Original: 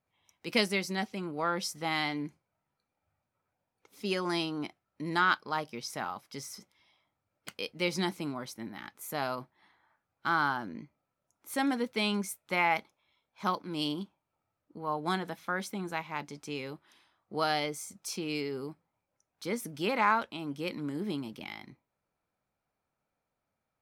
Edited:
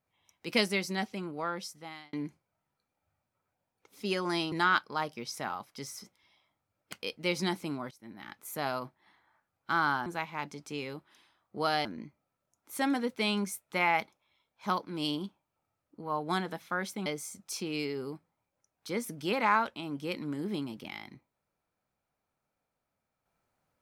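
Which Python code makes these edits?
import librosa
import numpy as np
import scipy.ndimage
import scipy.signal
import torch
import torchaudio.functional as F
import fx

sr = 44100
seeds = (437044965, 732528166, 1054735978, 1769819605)

y = fx.edit(x, sr, fx.fade_out_span(start_s=1.12, length_s=1.01),
    fx.cut(start_s=4.52, length_s=0.56),
    fx.fade_in_from(start_s=8.47, length_s=0.46, floor_db=-20.5),
    fx.move(start_s=15.83, length_s=1.79, to_s=10.62), tone=tone)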